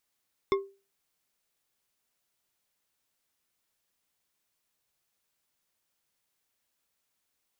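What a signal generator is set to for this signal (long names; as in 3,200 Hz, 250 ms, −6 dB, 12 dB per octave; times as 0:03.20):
struck glass bar, lowest mode 393 Hz, decay 0.32 s, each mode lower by 5 dB, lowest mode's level −19.5 dB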